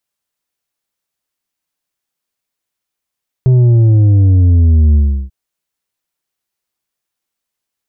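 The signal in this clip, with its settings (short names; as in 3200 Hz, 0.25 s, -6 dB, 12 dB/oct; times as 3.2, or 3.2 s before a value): sub drop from 130 Hz, over 1.84 s, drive 6 dB, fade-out 0.35 s, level -6 dB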